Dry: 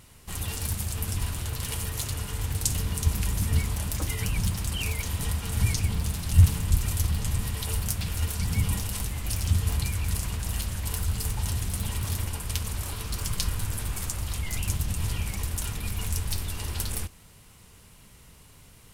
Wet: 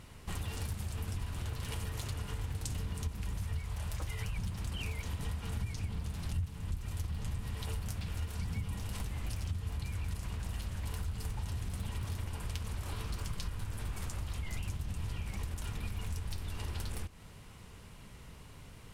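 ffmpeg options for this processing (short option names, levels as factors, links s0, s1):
-filter_complex "[0:a]asettb=1/sr,asplit=3[s0][s1][s2];[s0]atrim=end=3.374[s3];[s1]atrim=start=3.37:end=4.39,asetpts=PTS-STARTPTS,afade=t=in:d=0.004:c=qsin,afade=t=out:st=1.016:d=0.004:c=qsin,equalizer=f=260:w=1.5:g=-11[s4];[s2]atrim=start=4.386[s5];[s3][s4]acrossfade=d=0.004:c1=hsin:c2=qsin[s6];[s6][s5]acrossfade=d=0.004:c1=qsin:c2=hsin,lowpass=f=2900:p=1,acompressor=threshold=0.0141:ratio=5,volume=1.26"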